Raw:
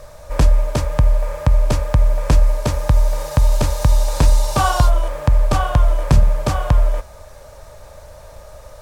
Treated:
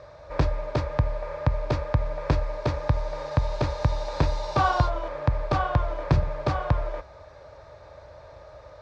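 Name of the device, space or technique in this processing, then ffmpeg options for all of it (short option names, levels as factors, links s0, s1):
guitar cabinet: -af "highpass=75,equalizer=f=210:t=q:w=4:g=-9,equalizer=f=340:t=q:w=4:g=4,equalizer=f=3000:t=q:w=4:g=-7,lowpass=f=4400:w=0.5412,lowpass=f=4400:w=1.3066,volume=0.596"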